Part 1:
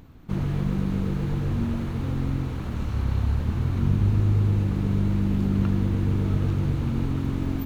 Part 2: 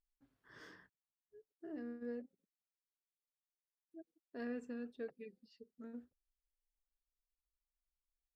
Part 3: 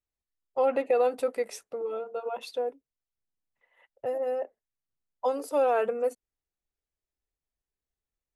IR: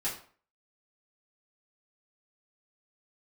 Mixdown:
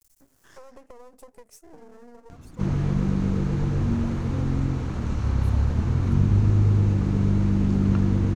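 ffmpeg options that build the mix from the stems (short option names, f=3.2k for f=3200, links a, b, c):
-filter_complex "[0:a]lowpass=4.1k,adelay=2300,volume=2dB[a];[1:a]volume=-3.5dB[b];[2:a]equalizer=f=140:t=o:w=2.9:g=14.5,volume=-19.5dB[c];[b][c]amix=inputs=2:normalize=0,aeval=exprs='max(val(0),0)':c=same,acompressor=threshold=-43dB:ratio=6,volume=0dB[d];[a][d]amix=inputs=2:normalize=0,highshelf=f=4.8k:t=q:w=1.5:g=10,acompressor=mode=upward:threshold=-39dB:ratio=2.5"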